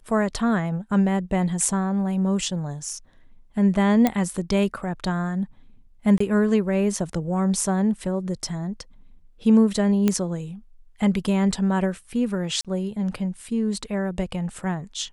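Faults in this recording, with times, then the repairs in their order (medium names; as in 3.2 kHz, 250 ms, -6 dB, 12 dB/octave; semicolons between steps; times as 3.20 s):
4.07 s: pop -7 dBFS
6.18–6.20 s: dropout 24 ms
10.08 s: pop -8 dBFS
12.61–12.65 s: dropout 37 ms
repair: de-click; interpolate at 6.18 s, 24 ms; interpolate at 12.61 s, 37 ms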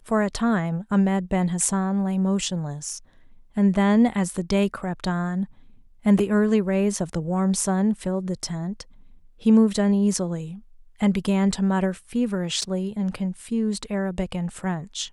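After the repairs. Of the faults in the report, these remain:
nothing left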